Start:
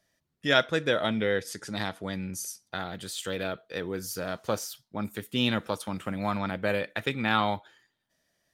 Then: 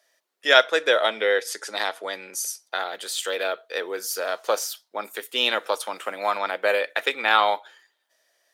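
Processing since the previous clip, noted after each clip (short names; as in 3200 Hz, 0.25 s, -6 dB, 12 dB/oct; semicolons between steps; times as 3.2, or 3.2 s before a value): HPF 440 Hz 24 dB/oct; gain +7.5 dB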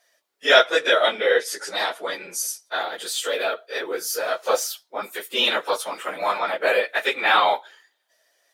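phase scrambler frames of 50 ms; gain +2 dB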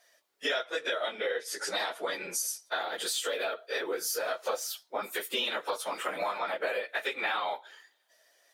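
compressor 8:1, threshold -29 dBFS, peak gain reduction 19.5 dB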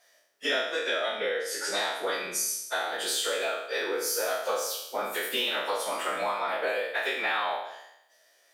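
spectral trails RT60 0.81 s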